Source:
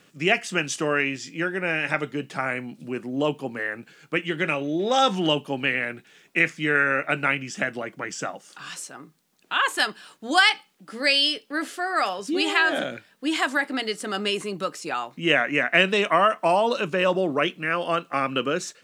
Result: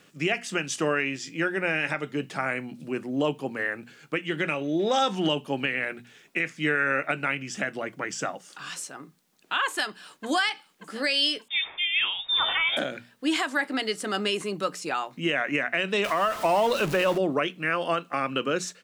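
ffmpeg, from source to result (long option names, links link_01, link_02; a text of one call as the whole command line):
ffmpeg -i in.wav -filter_complex "[0:a]asplit=2[link_01][link_02];[link_02]afade=type=in:start_time=9.65:duration=0.01,afade=type=out:start_time=10.26:duration=0.01,aecho=0:1:580|1160|1740|2320:0.177828|0.0800226|0.0360102|0.0162046[link_03];[link_01][link_03]amix=inputs=2:normalize=0,asettb=1/sr,asplit=3[link_04][link_05][link_06];[link_04]atrim=end=11.484[link_07];[link_05]atrim=start=11.48:end=12.77,asetpts=PTS-STARTPTS,afade=type=in:duration=0.004:curve=qsin,afade=type=out:start_time=1.286:duration=0.004:curve=qsin,lowpass=frequency=3300:width_type=q:width=0.5098,lowpass=frequency=3300:width_type=q:width=0.6013,lowpass=frequency=3300:width_type=q:width=0.9,lowpass=frequency=3300:width_type=q:width=2.563,afreqshift=-3900[link_08];[link_06]atrim=start=12.766[link_09];[link_07][link_08]acrossfade=duration=0.004:curve1=hsin:curve2=qsin[link_10];[link_10][link_09]acrossfade=duration=0.004:curve1=qsin:curve2=hsin,asettb=1/sr,asplit=3[link_11][link_12][link_13];[link_11]atrim=end=16.044[link_14];[link_12]atrim=start=16.04:end=17.18,asetpts=PTS-STARTPTS,afade=type=in:duration=0.004:curve=qsin,afade=type=out:start_time=1.136:duration=0.004:curve=qsin,aeval=exprs='val(0)+0.5*0.0398*sgn(val(0))':channel_layout=same[link_15];[link_13]atrim=start=17.176[link_16];[link_14][link_15]acrossfade=duration=0.004:curve1=hsin:curve2=qsin[link_17];[link_17][link_16]acrossfade=duration=0.004:curve1=qsin:curve2=hsin,bandreject=frequency=60:width_type=h:width=6,bandreject=frequency=120:width_type=h:width=6,bandreject=frequency=180:width_type=h:width=6,bandreject=frequency=240:width_type=h:width=6,alimiter=limit=-14dB:level=0:latency=1:release=238" out.wav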